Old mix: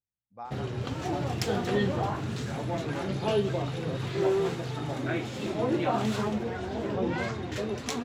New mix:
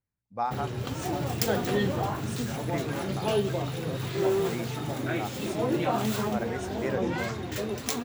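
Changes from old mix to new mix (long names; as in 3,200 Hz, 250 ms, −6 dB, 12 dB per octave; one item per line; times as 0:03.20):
speech +11.5 dB
master: remove high-frequency loss of the air 61 metres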